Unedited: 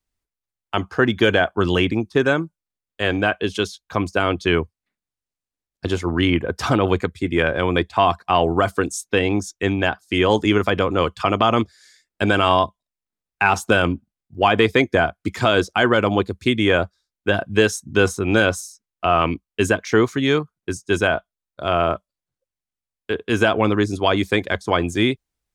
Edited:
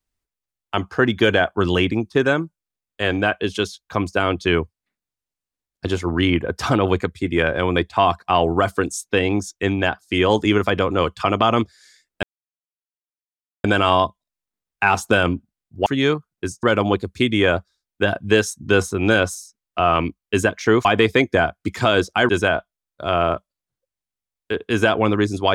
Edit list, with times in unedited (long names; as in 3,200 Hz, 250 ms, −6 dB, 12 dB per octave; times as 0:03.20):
0:12.23: splice in silence 1.41 s
0:14.45–0:15.89: swap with 0:20.11–0:20.88